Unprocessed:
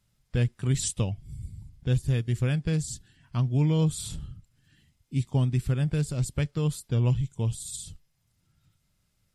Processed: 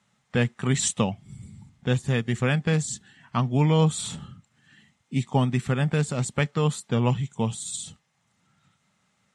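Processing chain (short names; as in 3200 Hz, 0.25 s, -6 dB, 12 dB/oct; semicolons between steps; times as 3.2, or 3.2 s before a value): speaker cabinet 200–8100 Hz, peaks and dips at 210 Hz +6 dB, 320 Hz -6 dB, 820 Hz +7 dB, 1200 Hz +6 dB, 1900 Hz +5 dB, 4900 Hz -8 dB; gain +7.5 dB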